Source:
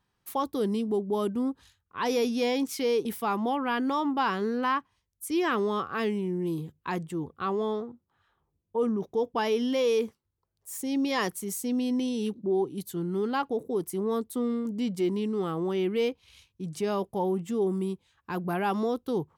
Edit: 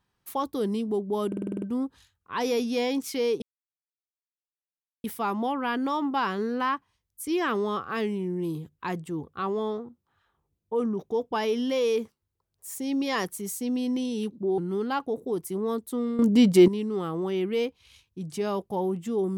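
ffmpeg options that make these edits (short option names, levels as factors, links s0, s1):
-filter_complex "[0:a]asplit=12[s0][s1][s2][s3][s4][s5][s6][s7][s8][s9][s10][s11];[s0]atrim=end=1.322[s12];[s1]atrim=start=1.268:end=1.322[s13];[s2]atrim=start=1.268:end=1.322[s14];[s3]atrim=start=1.268:end=1.322[s15];[s4]atrim=start=1.268:end=1.322[s16];[s5]atrim=start=1.268:end=1.322[s17];[s6]atrim=start=1.268:end=1.322[s18];[s7]atrim=start=1.268:end=3.07,asetpts=PTS-STARTPTS,afade=t=out:st=1.798:d=0.004:c=hsin,apad=pad_dur=1.62[s19];[s8]atrim=start=3.07:end=12.612,asetpts=PTS-STARTPTS,afade=t=in:d=0.004:c=hsin[s20];[s9]atrim=start=13.008:end=14.622[s21];[s10]atrim=start=14.618:end=15.112,asetpts=PTS-STARTPTS,volume=3.76[s22];[s11]atrim=start=15.108[s23];[s12][s13]acrossfade=d=0.004:c1=hsin:c2=hsin[s24];[s24][s14]acrossfade=d=0.004:c1=hsin:c2=hsin[s25];[s25][s15]acrossfade=d=0.004:c1=hsin:c2=hsin[s26];[s26][s16]acrossfade=d=0.004:c1=hsin:c2=hsin[s27];[s27][s17]acrossfade=d=0.004:c1=hsin:c2=hsin[s28];[s28][s18]acrossfade=d=0.004:c1=hsin:c2=hsin[s29];[s19][s20]concat=n=2:v=0:a=1[s30];[s29][s30]acrossfade=d=0.004:c1=hsin:c2=hsin[s31];[s31][s21]acrossfade=d=0.004:c1=hsin:c2=hsin[s32];[s32][s22]acrossfade=d=0.004:c1=hsin:c2=hsin[s33];[s33][s23]acrossfade=d=0.004:c1=hsin:c2=hsin"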